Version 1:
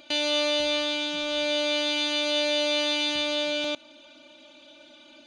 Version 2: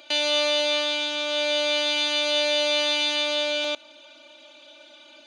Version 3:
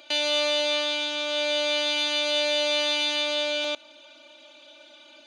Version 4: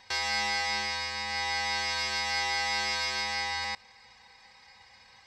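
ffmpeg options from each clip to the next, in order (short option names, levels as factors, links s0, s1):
-af "highpass=430,volume=1.41"
-af "acontrast=57,volume=0.422"
-af "aeval=exprs='val(0)*sin(2*PI*1400*n/s)':c=same,volume=0.75"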